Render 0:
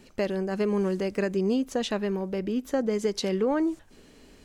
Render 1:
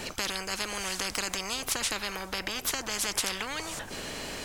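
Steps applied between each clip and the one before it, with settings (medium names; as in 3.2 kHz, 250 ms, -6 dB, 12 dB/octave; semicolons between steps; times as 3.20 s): spectrum-flattening compressor 10:1; trim +6.5 dB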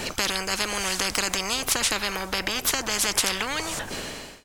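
fade out at the end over 0.53 s; trim +6.5 dB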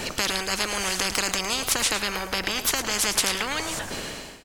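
delay 108 ms -11 dB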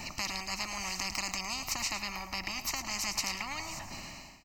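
static phaser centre 2.3 kHz, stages 8; trim -7 dB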